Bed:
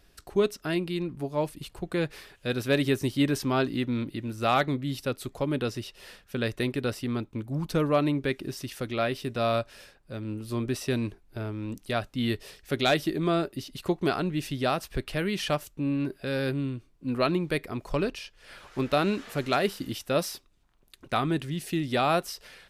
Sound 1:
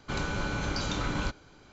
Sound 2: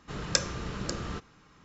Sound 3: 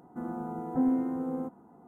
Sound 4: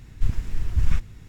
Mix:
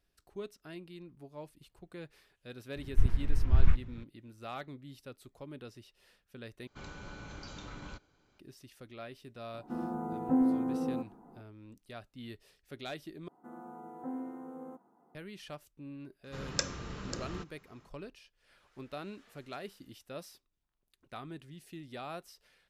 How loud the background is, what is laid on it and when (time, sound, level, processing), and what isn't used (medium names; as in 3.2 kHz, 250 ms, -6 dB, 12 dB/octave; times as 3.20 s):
bed -18 dB
2.76 s: add 4 -2.5 dB + Bessel low-pass 2 kHz
6.67 s: replace with 1 -15 dB
9.54 s: add 3 -0.5 dB
13.28 s: replace with 3 -7 dB + high-pass 500 Hz 6 dB/octave
16.24 s: add 2 -6 dB